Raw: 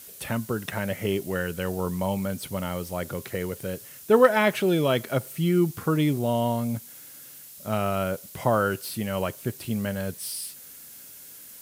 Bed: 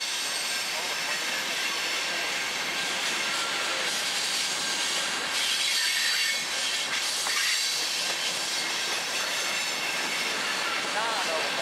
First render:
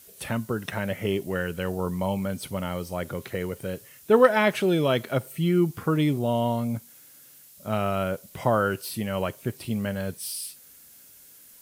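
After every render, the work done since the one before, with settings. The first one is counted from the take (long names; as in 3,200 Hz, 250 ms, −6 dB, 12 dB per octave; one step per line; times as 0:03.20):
noise reduction from a noise print 6 dB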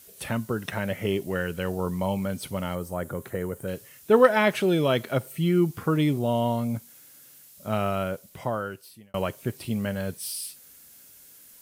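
0:02.75–0:03.68: flat-topped bell 3,500 Hz −9.5 dB
0:07.83–0:09.14: fade out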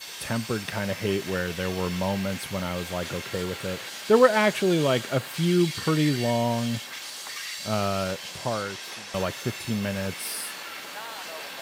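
mix in bed −9.5 dB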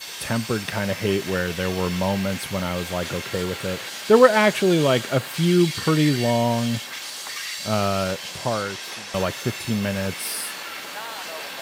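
level +4 dB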